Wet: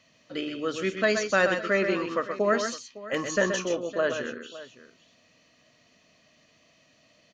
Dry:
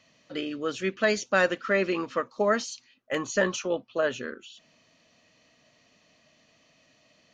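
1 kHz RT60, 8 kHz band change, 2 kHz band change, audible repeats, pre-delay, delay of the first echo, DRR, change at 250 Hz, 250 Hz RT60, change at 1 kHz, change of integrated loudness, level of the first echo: no reverb audible, +1.0 dB, +1.0 dB, 3, no reverb audible, 50 ms, no reverb audible, +1.0 dB, no reverb audible, +0.5 dB, +1.0 dB, −18.5 dB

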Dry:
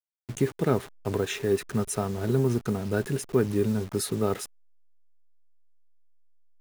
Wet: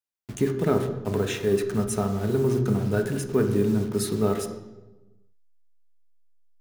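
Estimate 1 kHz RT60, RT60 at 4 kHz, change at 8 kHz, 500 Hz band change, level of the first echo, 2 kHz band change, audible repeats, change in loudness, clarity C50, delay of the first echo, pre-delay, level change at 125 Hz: 1.0 s, 0.80 s, 0.0 dB, +3.0 dB, no echo audible, +1.0 dB, no echo audible, +2.5 dB, 9.0 dB, no echo audible, 3 ms, +2.5 dB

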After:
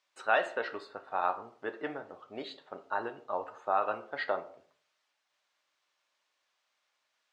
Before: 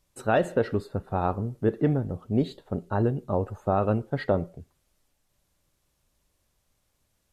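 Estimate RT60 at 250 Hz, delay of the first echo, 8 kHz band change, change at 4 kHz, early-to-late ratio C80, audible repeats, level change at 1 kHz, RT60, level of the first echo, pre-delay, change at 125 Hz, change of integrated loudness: 0.50 s, no echo audible, can't be measured, +0.5 dB, 19.5 dB, no echo audible, −1.5 dB, 0.50 s, no echo audible, 3 ms, −33.0 dB, −7.0 dB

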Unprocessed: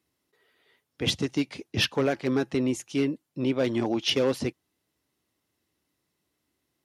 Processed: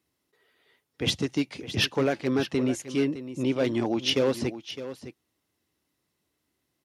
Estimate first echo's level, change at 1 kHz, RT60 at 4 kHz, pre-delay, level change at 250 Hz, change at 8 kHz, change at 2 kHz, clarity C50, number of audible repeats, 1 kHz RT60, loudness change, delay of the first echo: −12.5 dB, 0.0 dB, no reverb audible, no reverb audible, 0.0 dB, 0.0 dB, 0.0 dB, no reverb audible, 1, no reverb audible, 0.0 dB, 611 ms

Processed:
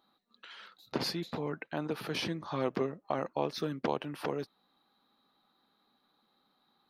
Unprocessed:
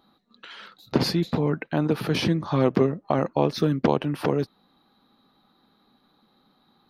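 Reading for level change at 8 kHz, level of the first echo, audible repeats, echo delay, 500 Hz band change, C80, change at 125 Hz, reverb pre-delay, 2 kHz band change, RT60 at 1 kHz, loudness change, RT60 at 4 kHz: −7.0 dB, no echo audible, no echo audible, no echo audible, −10.5 dB, no reverb audible, −16.0 dB, no reverb audible, −7.5 dB, no reverb audible, −11.0 dB, no reverb audible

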